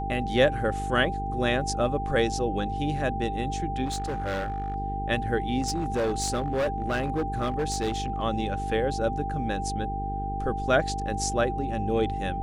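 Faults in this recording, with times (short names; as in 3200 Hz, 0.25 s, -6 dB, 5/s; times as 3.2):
buzz 50 Hz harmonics 9 -33 dBFS
tone 790 Hz -31 dBFS
3.85–4.76 clipped -26 dBFS
5.61–8.22 clipped -22.5 dBFS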